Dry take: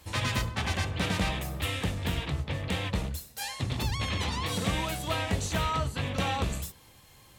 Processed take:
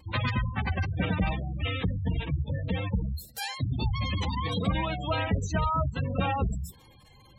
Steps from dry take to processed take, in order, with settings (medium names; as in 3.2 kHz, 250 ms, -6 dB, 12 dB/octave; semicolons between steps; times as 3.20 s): spectral gate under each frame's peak -15 dB strong; wow and flutter 21 cents; trim +3 dB